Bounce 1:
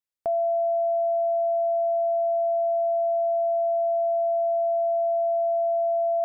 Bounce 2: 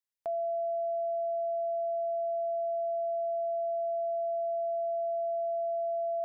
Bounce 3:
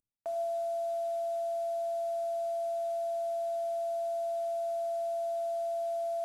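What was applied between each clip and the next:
tilt shelving filter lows −6 dB, about 640 Hz; level −8.5 dB
variable-slope delta modulation 64 kbit/s; rectangular room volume 3,100 cubic metres, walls furnished, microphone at 2.6 metres; level −3.5 dB

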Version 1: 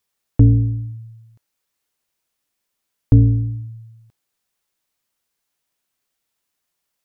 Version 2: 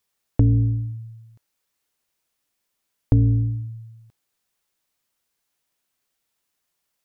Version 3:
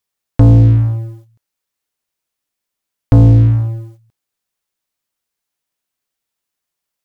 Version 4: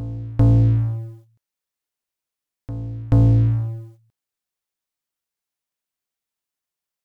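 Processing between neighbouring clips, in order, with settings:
downward compressor 4 to 1, threshold −14 dBFS, peak gain reduction 6.5 dB
leveller curve on the samples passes 3; level +3 dB
backwards echo 433 ms −15 dB; level −7.5 dB

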